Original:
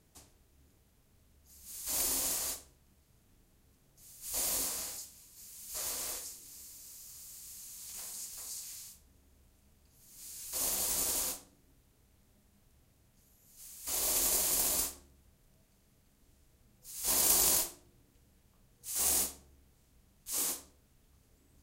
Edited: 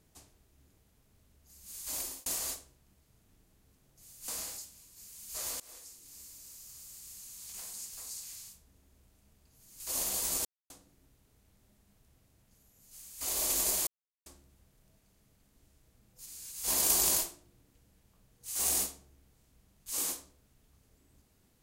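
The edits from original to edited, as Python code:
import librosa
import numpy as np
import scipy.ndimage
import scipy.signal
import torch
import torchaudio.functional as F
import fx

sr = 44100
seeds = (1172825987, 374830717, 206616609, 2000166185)

y = fx.edit(x, sr, fx.fade_out_span(start_s=1.81, length_s=0.45),
    fx.cut(start_s=4.28, length_s=0.4),
    fx.fade_in_from(start_s=6.0, length_s=0.6, floor_db=-23.0),
    fx.move(start_s=10.2, length_s=0.26, to_s=16.92),
    fx.silence(start_s=11.11, length_s=0.25),
    fx.silence(start_s=14.53, length_s=0.39), tone=tone)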